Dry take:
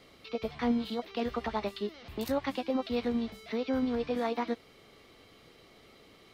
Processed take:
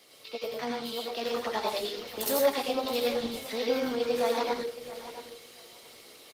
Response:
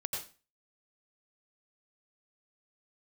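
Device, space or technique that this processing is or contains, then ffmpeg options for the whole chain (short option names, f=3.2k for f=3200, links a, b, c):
far-field microphone of a smart speaker: -filter_complex "[0:a]bass=f=250:g=-14,treble=f=4k:g=14,aecho=1:1:672|1344:0.211|0.0359[a];[1:a]atrim=start_sample=2205[b];[a][b]afir=irnorm=-1:irlink=0,highpass=f=90:w=0.5412,highpass=f=90:w=1.3066,dynaudnorm=f=370:g=7:m=3.5dB" -ar 48000 -c:a libopus -b:a 20k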